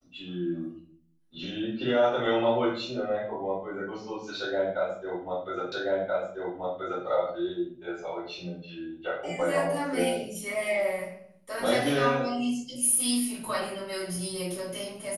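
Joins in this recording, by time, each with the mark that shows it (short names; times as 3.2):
5.72 repeat of the last 1.33 s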